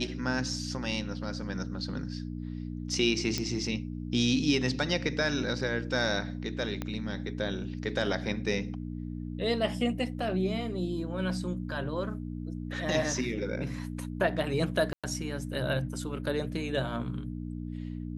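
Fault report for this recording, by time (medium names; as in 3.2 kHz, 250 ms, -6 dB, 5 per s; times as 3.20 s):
hum 60 Hz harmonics 5 -37 dBFS
3.38 s: pop -16 dBFS
6.82 s: pop -19 dBFS
14.93–15.04 s: dropout 106 ms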